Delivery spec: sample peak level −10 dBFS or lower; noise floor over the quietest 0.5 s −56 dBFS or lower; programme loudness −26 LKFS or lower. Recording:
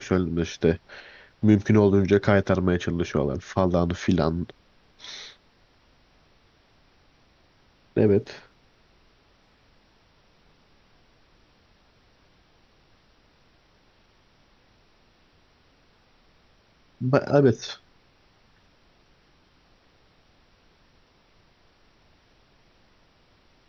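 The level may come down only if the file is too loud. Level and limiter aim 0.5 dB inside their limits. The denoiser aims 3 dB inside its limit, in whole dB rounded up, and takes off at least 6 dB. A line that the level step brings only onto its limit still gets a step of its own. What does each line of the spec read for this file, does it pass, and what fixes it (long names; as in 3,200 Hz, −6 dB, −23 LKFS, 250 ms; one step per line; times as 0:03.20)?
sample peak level −4.5 dBFS: out of spec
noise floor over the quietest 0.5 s −61 dBFS: in spec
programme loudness −23.0 LKFS: out of spec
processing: level −3.5 dB
brickwall limiter −10.5 dBFS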